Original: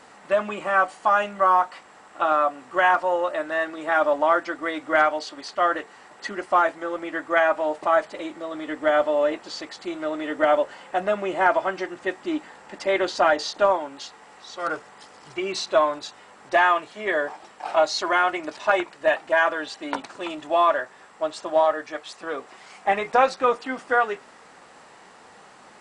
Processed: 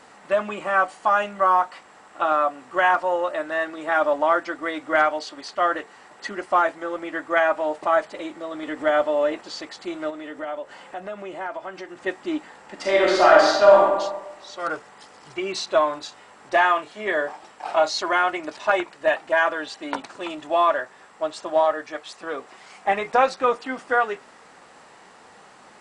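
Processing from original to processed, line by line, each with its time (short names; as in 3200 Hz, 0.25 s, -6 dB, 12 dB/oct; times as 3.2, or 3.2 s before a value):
8.63–9.41 upward compressor, threshold -27 dBFS
10.1–12.06 compressor 2:1, threshold -37 dBFS
12.74–13.82 reverb throw, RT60 1.1 s, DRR -4 dB
15.84–18 doubler 33 ms -12 dB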